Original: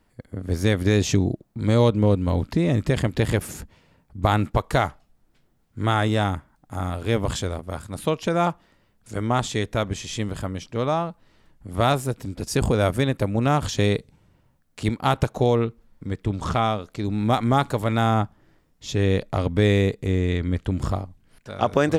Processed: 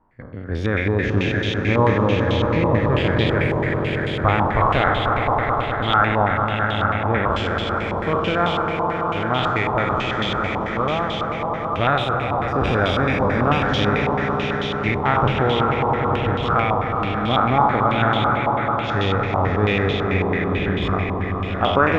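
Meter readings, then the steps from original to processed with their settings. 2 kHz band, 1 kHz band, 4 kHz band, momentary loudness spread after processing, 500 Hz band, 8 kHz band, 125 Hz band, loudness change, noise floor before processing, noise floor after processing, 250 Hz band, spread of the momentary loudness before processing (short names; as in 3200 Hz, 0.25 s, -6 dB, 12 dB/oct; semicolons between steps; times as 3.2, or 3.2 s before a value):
+9.5 dB, +8.0 dB, +5.5 dB, 5 LU, +3.5 dB, under -10 dB, +1.5 dB, +3.5 dB, -63 dBFS, -25 dBFS, +2.0 dB, 11 LU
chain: spectral trails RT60 1.00 s; swelling echo 0.103 s, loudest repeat 5, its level -9 dB; de-esser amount 50%; stepped low-pass 9.1 Hz 1000–3200 Hz; gain -3 dB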